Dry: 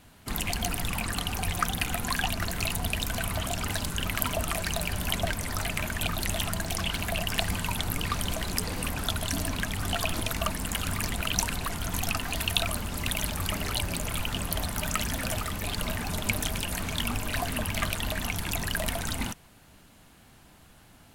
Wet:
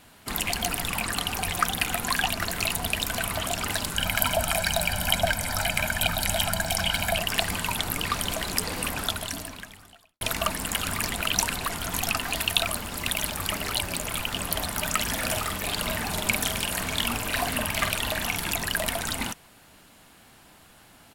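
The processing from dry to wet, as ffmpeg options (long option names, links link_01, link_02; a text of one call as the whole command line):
ffmpeg -i in.wav -filter_complex "[0:a]asettb=1/sr,asplit=3[link_01][link_02][link_03];[link_01]atrim=end=3.964[link_04];[link_02]atrim=start=3.96:end=7.18,asetpts=PTS-STARTPTS,afade=type=in:duration=0.004:curve=qsin,afade=type=out:start_time=3.216:duration=0.004:curve=qsin,aecho=1:1:1.3:0.7,atrim=end_sample=142002[link_05];[link_03]atrim=start=7.176[link_06];[link_04][link_05]acrossfade=duration=0.004:curve1=hsin:curve2=qsin[link_07];[link_07][link_06]acrossfade=duration=0.004:curve1=qsin:curve2=hsin,asettb=1/sr,asplit=3[link_08][link_09][link_10];[link_08]atrim=end=12.414[link_11];[link_09]atrim=start=12.41:end=14.39,asetpts=PTS-STARTPTS,afade=type=in:duration=0.004:curve=qsin,afade=type=out:start_time=1.976:duration=0.004:curve=qsin,aeval=exprs='sgn(val(0))*max(abs(val(0))-0.00447,0)':channel_layout=same[link_12];[link_10]atrim=start=14.386[link_13];[link_11][link_12]acrossfade=duration=0.004:curve1=hsin:curve2=qsin[link_14];[link_14][link_13]acrossfade=duration=0.004:curve1=qsin:curve2=hsin,asplit=3[link_15][link_16][link_17];[link_15]afade=type=out:start_time=15.06:duration=0.02[link_18];[link_16]asplit=2[link_19][link_20];[link_20]adelay=47,volume=-6.5dB[link_21];[link_19][link_21]amix=inputs=2:normalize=0,afade=type=in:start_time=15.06:duration=0.02,afade=type=out:start_time=18.52:duration=0.02[link_22];[link_17]afade=type=in:start_time=18.52:duration=0.02[link_23];[link_18][link_22][link_23]amix=inputs=3:normalize=0,asplit=2[link_24][link_25];[link_24]atrim=end=10.21,asetpts=PTS-STARTPTS,afade=type=out:start_time=9:duration=1.21:curve=qua[link_26];[link_25]atrim=start=10.21,asetpts=PTS-STARTPTS,afade=type=in:duration=0.004:curve=hsin[link_27];[link_26][link_27]concat=n=2:v=0:a=1,lowshelf=frequency=210:gain=-9.5,bandreject=frequency=6200:width=25,acontrast=31,volume=-1dB" out.wav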